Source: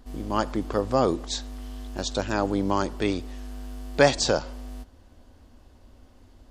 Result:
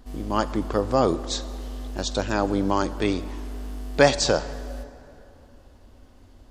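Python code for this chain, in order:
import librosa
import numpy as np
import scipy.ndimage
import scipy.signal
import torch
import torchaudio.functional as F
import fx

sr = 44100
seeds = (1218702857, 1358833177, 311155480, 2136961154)

y = fx.rev_plate(x, sr, seeds[0], rt60_s=3.1, hf_ratio=0.55, predelay_ms=0, drr_db=15.0)
y = F.gain(torch.from_numpy(y), 1.5).numpy()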